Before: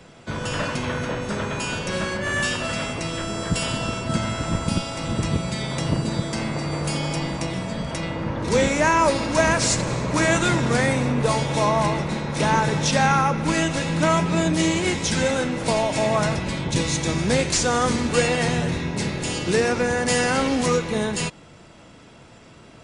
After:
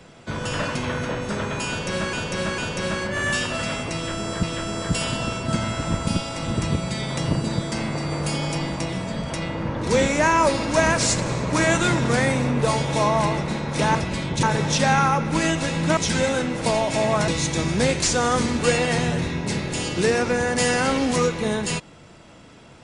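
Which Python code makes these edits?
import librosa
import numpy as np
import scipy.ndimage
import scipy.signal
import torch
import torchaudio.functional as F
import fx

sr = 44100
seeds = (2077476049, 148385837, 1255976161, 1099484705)

y = fx.edit(x, sr, fx.repeat(start_s=1.68, length_s=0.45, count=3),
    fx.repeat(start_s=3.04, length_s=0.49, count=2),
    fx.cut(start_s=14.1, length_s=0.89),
    fx.move(start_s=16.3, length_s=0.48, to_s=12.56), tone=tone)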